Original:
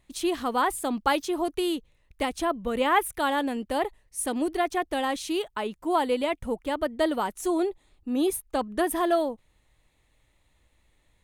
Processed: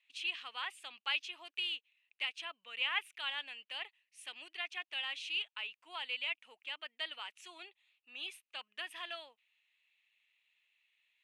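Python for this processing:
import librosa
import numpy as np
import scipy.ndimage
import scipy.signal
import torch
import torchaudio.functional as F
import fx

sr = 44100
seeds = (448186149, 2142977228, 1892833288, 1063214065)

y = fx.ladder_bandpass(x, sr, hz=2900.0, resonance_pct=70)
y = fx.high_shelf(y, sr, hz=2200.0, db=-10.5)
y = y * librosa.db_to_amplitude(10.5)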